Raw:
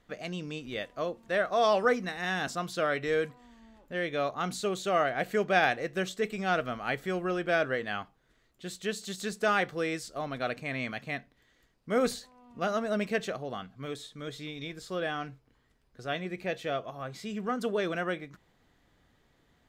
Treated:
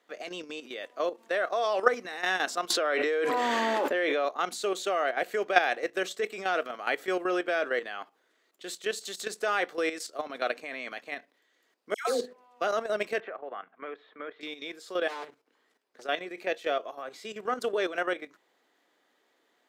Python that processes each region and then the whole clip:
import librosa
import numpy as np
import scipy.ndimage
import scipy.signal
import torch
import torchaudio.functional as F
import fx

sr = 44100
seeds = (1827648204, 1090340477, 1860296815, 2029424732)

y = fx.chain(x, sr, fx.highpass(hz=250.0, slope=12),
    fx.high_shelf(hz=3700.0, db=-8.5),
    fx.env_flatten(amount_pct=100), at=(2.7, 4.25))
y = fx.chain(y, sr, fx.hum_notches(base_hz=50, count=10),
    fx.dispersion(late='lows', ms=149.0, hz=1200.0), at=(11.94, 12.61))
y = fx.chain(y, sr, fx.lowpass(hz=2100.0, slope=24),
    fx.low_shelf(hz=450.0, db=-11.0),
    fx.band_squash(depth_pct=100), at=(13.2, 14.41))
y = fx.chain(y, sr, fx.overload_stage(gain_db=34.0),
    fx.doppler_dist(depth_ms=0.83), at=(15.08, 16.03))
y = scipy.signal.sosfilt(scipy.signal.butter(4, 320.0, 'highpass', fs=sr, output='sos'), y)
y = fx.level_steps(y, sr, step_db=11)
y = F.gain(torch.from_numpy(y), 6.0).numpy()